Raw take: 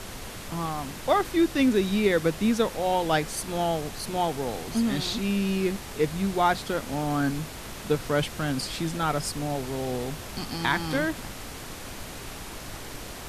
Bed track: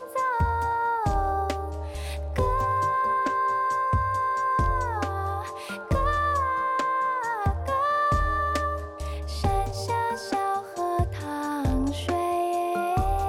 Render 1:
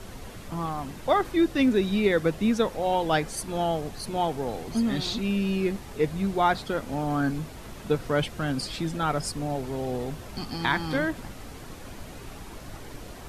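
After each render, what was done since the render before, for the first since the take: denoiser 8 dB, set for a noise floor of -39 dBFS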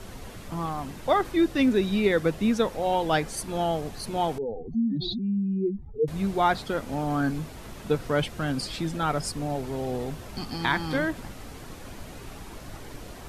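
4.38–6.08 spectral contrast raised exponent 2.9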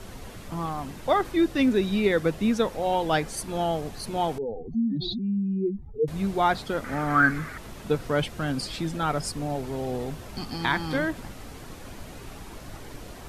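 6.84–7.58 band shelf 1600 Hz +15 dB 1.1 oct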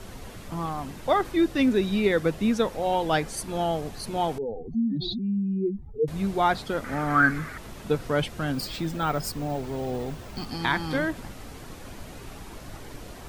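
8.54–10.47 careless resampling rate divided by 2×, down filtered, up hold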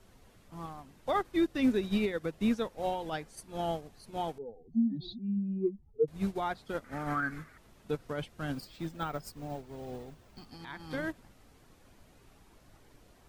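limiter -18 dBFS, peak gain reduction 9 dB; upward expander 2.5:1, over -34 dBFS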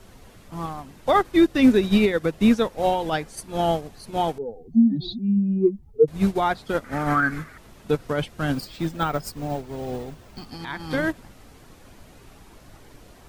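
gain +11.5 dB

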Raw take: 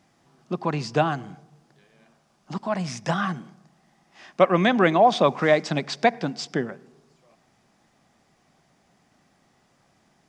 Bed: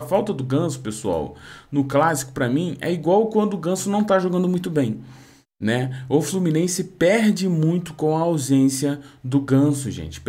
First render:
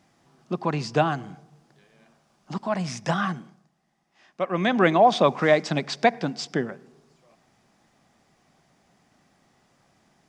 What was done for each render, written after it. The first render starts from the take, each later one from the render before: 3.27–4.85 dip -10.5 dB, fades 0.44 s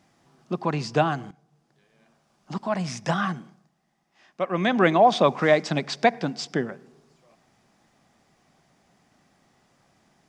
1.31–2.58 fade in, from -14.5 dB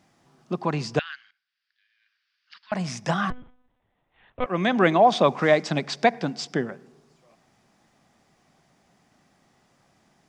0.99–2.72 elliptic band-pass 1600–4800 Hz, stop band 50 dB; 3.3–4.46 monotone LPC vocoder at 8 kHz 250 Hz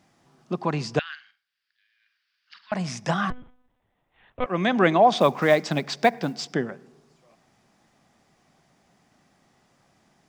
1.09–2.74 flutter echo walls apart 8.1 m, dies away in 0.26 s; 5.17–6.54 short-mantissa float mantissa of 4-bit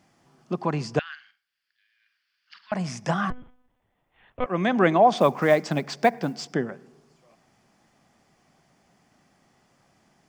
notch 3800 Hz, Q 15; dynamic EQ 3600 Hz, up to -4 dB, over -41 dBFS, Q 0.73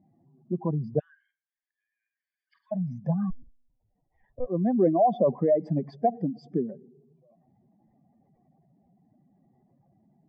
spectral contrast raised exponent 2.3; running mean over 32 samples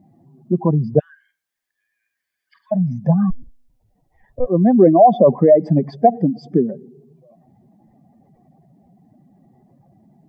gain +11.5 dB; limiter -1 dBFS, peak gain reduction 1.5 dB

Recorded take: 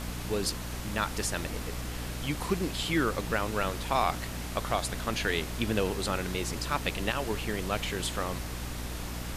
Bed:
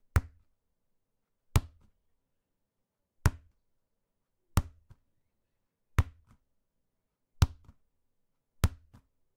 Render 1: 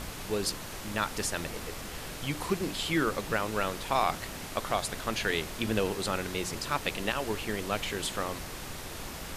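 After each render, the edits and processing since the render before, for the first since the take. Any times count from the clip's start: notches 60/120/180/240/300 Hz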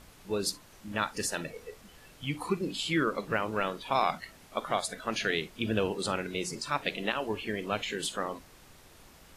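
noise print and reduce 15 dB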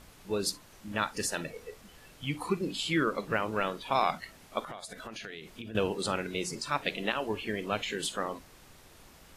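4.6–5.75 compressor 10:1, threshold -38 dBFS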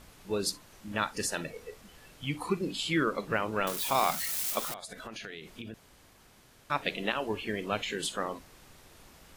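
3.67–4.74 switching spikes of -25 dBFS; 5.74–6.7 room tone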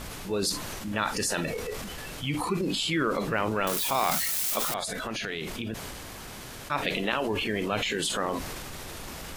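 transient shaper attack -1 dB, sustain +7 dB; fast leveller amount 50%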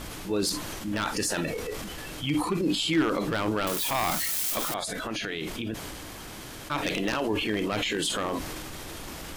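one-sided fold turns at -20 dBFS; small resonant body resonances 310/3200 Hz, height 9 dB, ringing for 95 ms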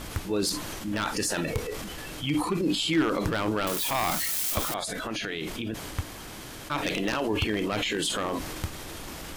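add bed -6.5 dB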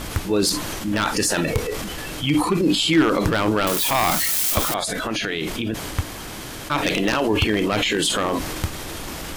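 gain +7.5 dB

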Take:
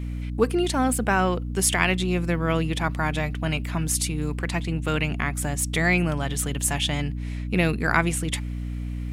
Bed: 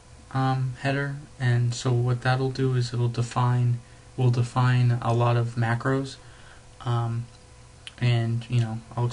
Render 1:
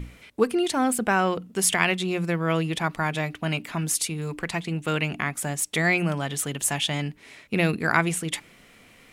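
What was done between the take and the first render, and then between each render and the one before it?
notches 60/120/180/240/300 Hz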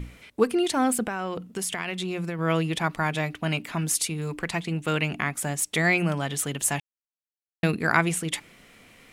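1.03–2.39 compressor, threshold -26 dBFS; 6.8–7.63 mute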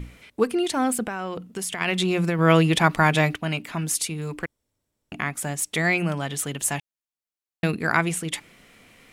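1.81–3.36 gain +7.5 dB; 4.46–5.12 room tone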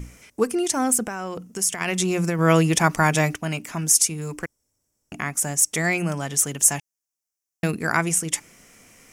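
resonant high shelf 4800 Hz +6.5 dB, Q 3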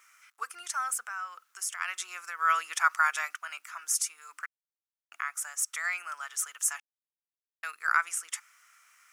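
requantised 10-bit, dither none; ladder high-pass 1200 Hz, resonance 70%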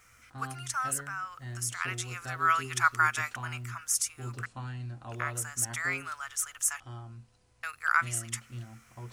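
add bed -18 dB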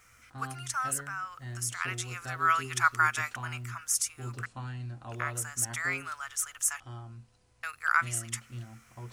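nothing audible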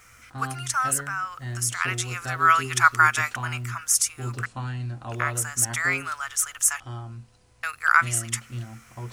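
gain +7.5 dB

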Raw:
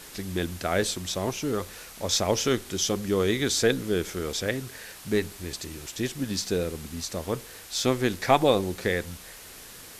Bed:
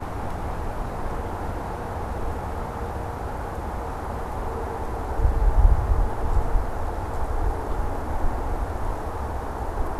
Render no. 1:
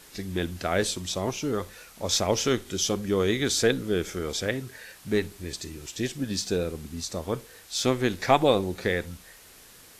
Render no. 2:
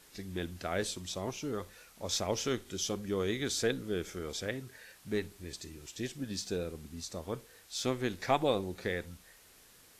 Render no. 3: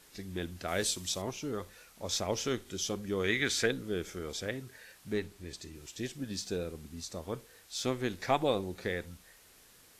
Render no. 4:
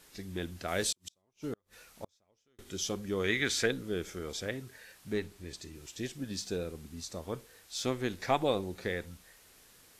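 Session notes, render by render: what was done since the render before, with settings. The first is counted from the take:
noise print and reduce 6 dB
gain -8.5 dB
0.68–1.22 high shelf 3000 Hz +8.5 dB; 3.24–3.66 bell 2000 Hz +11.5 dB 1.3 oct; 5.13–5.75 high shelf 8300 Hz -5.5 dB
0.92–2.59 flipped gate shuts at -26 dBFS, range -40 dB

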